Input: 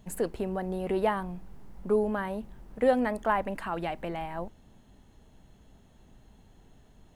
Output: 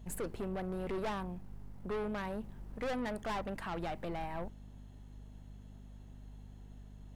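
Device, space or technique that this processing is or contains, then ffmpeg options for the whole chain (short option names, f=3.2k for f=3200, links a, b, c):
valve amplifier with mains hum: -af "aeval=exprs='(tanh(39.8*val(0)+0.4)-tanh(0.4))/39.8':c=same,aeval=exprs='val(0)+0.00398*(sin(2*PI*50*n/s)+sin(2*PI*2*50*n/s)/2+sin(2*PI*3*50*n/s)/3+sin(2*PI*4*50*n/s)/4+sin(2*PI*5*50*n/s)/5)':c=same,volume=-2dB"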